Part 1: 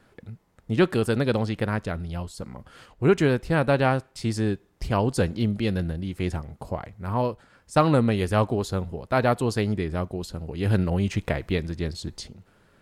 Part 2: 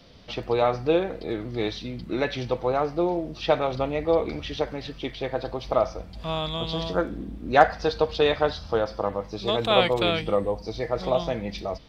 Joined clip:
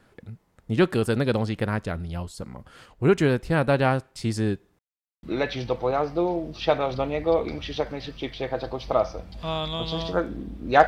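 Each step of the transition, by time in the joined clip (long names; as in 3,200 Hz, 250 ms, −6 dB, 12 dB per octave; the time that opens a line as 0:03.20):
part 1
0:04.79–0:05.23: silence
0:05.23: continue with part 2 from 0:02.04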